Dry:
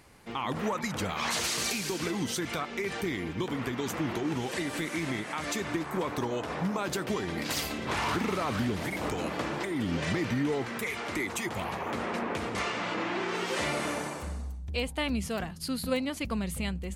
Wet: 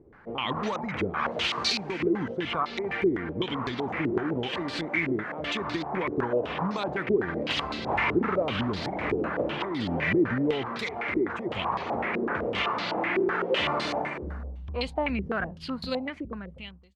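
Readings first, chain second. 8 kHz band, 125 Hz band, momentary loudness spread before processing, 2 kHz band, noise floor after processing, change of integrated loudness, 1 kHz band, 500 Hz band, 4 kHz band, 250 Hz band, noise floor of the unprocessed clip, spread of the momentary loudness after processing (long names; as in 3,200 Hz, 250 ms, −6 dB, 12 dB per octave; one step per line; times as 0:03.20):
below −10 dB, 0.0 dB, 4 LU, +3.5 dB, −43 dBFS, +3.0 dB, +3.5 dB, +5.0 dB, +3.0 dB, +2.5 dB, −39 dBFS, 7 LU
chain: fade-out on the ending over 1.37 s
low-pass on a step sequencer 7.9 Hz 390–4,300 Hz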